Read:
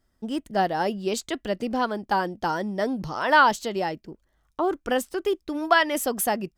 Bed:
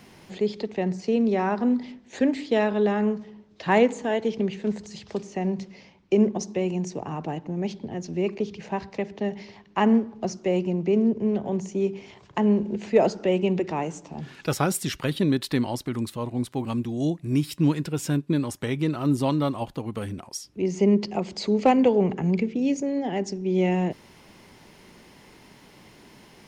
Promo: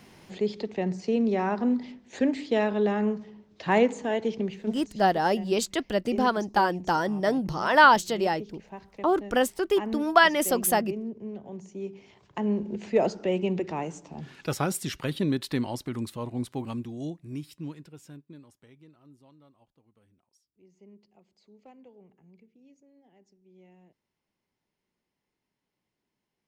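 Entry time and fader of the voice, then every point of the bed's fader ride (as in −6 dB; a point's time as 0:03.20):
4.45 s, +1.0 dB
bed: 0:04.30 −2.5 dB
0:05.21 −13.5 dB
0:11.49 −13.5 dB
0:12.80 −4 dB
0:16.54 −4 dB
0:19.23 −34 dB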